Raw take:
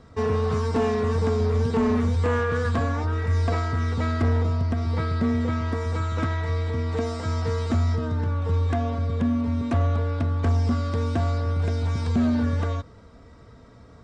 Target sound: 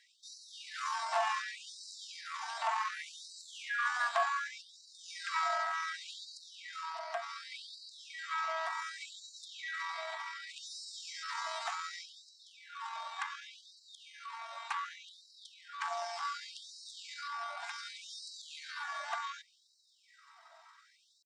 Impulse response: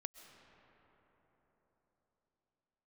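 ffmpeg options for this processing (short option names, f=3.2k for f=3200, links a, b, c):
-af "atempo=0.66,afftfilt=real='re*gte(b*sr/1024,600*pow(3900/600,0.5+0.5*sin(2*PI*0.67*pts/sr)))':imag='im*gte(b*sr/1024,600*pow(3900/600,0.5+0.5*sin(2*PI*0.67*pts/sr)))':win_size=1024:overlap=0.75"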